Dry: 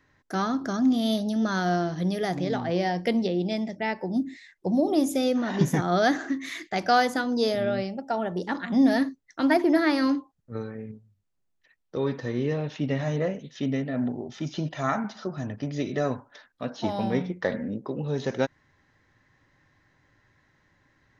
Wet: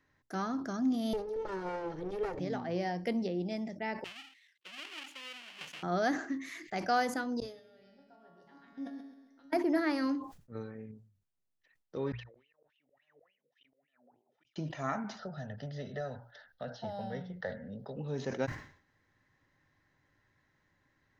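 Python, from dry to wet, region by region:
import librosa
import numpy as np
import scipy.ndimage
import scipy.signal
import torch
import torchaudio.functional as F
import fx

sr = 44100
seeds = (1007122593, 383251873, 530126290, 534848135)

y = fx.chain(x, sr, fx.lower_of_two(delay_ms=2.2),
    fx.lowpass(hz=2000.0, slope=6),
    fx.peak_eq(hz=470.0, db=6.5, octaves=1.0), at=(1.13, 2.39))
y = fx.chain(y, sr, fx.halfwave_hold(),
    fx.bandpass_q(hz=3000.0, q=3.6), at=(4.04, 5.83))
y = fx.chain(y, sr, fx.level_steps(step_db=19),
    fx.comb_fb(f0_hz=140.0, decay_s=0.76, harmonics='all', damping=0.0, mix_pct=90),
    fx.echo_feedback(ms=133, feedback_pct=51, wet_db=-5.0), at=(7.4, 9.53))
y = fx.chain(y, sr, fx.wah_lfo(hz=3.5, low_hz=470.0, high_hz=3100.0, q=15.0),
    fx.auto_swell(attack_ms=661.0), at=(12.12, 14.56))
y = fx.chain(y, sr, fx.fixed_phaser(hz=1600.0, stages=8),
    fx.band_squash(depth_pct=70), at=(15.19, 17.97))
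y = fx.hum_notches(y, sr, base_hz=60, count=2)
y = fx.dynamic_eq(y, sr, hz=3600.0, q=3.9, threshold_db=-54.0, ratio=4.0, max_db=-7)
y = fx.sustainer(y, sr, db_per_s=110.0)
y = F.gain(torch.from_numpy(y), -8.5).numpy()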